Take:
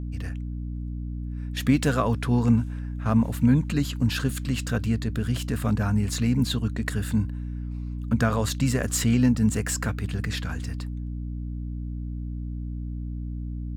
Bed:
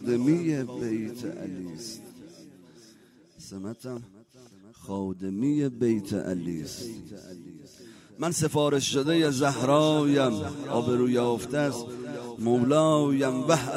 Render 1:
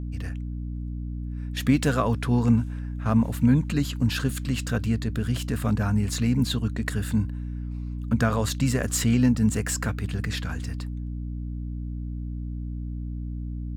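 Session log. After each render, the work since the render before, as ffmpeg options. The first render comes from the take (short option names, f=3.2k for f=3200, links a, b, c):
-af anull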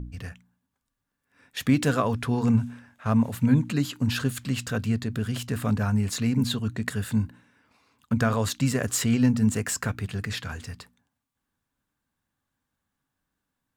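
-af "bandreject=f=60:t=h:w=4,bandreject=f=120:t=h:w=4,bandreject=f=180:t=h:w=4,bandreject=f=240:t=h:w=4,bandreject=f=300:t=h:w=4"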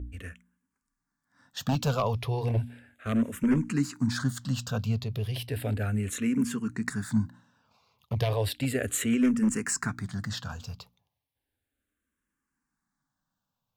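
-filter_complex "[0:a]aeval=exprs='0.178*(abs(mod(val(0)/0.178+3,4)-2)-1)':c=same,asplit=2[a][b];[b]afreqshift=-0.34[c];[a][c]amix=inputs=2:normalize=1"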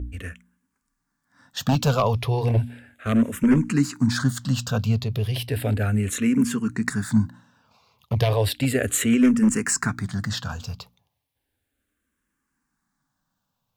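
-af "volume=6.5dB"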